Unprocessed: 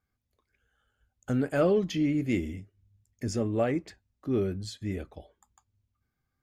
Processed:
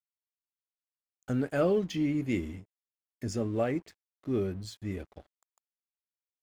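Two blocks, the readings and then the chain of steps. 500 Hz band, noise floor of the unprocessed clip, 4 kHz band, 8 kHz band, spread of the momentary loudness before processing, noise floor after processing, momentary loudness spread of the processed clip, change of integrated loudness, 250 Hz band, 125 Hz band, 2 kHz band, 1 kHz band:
-2.5 dB, -82 dBFS, -3.0 dB, -3.0 dB, 15 LU, under -85 dBFS, 15 LU, -2.5 dB, -2.5 dB, -2.5 dB, -2.5 dB, -2.0 dB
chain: crossover distortion -52.5 dBFS; trim -2 dB

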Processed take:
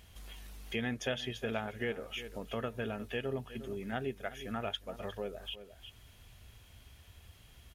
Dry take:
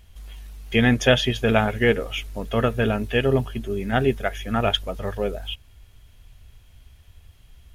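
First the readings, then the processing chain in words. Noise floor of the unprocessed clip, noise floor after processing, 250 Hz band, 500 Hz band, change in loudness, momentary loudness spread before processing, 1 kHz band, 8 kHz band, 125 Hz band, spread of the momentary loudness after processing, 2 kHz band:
-52 dBFS, -59 dBFS, -16.5 dB, -16.0 dB, -16.0 dB, 12 LU, -15.5 dB, -13.5 dB, -18.5 dB, 21 LU, -15.5 dB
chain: high-pass 130 Hz 6 dB/octave; on a send: delay 356 ms -18 dB; on the sum: compression 2:1, threshold -47 dBFS, peak gain reduction 19 dB

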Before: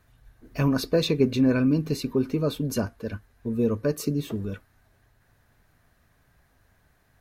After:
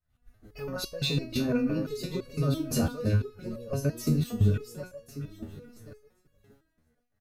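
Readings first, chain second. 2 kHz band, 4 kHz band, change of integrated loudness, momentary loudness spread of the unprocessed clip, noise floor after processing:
-4.0 dB, -1.0 dB, -4.0 dB, 15 LU, -76 dBFS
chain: backward echo that repeats 543 ms, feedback 46%, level -9 dB; expander -47 dBFS; bass shelf 230 Hz +5 dB; comb 1.5 ms, depth 31%; loudness maximiser +16.5 dB; resonator arpeggio 5.9 Hz 79–560 Hz; trim -6 dB

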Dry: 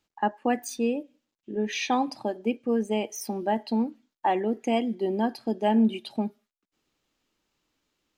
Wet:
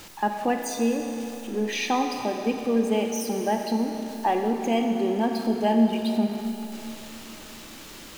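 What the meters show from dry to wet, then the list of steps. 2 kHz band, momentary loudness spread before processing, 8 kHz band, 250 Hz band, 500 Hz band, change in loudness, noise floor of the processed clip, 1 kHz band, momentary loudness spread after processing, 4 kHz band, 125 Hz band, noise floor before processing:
+2.5 dB, 8 LU, +4.5 dB, +2.5 dB, +2.5 dB, +2.0 dB, -43 dBFS, +2.0 dB, 16 LU, +3.5 dB, no reading, under -85 dBFS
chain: jump at every zero crossing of -38.5 dBFS; Schroeder reverb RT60 3.4 s, combs from 27 ms, DRR 4 dB

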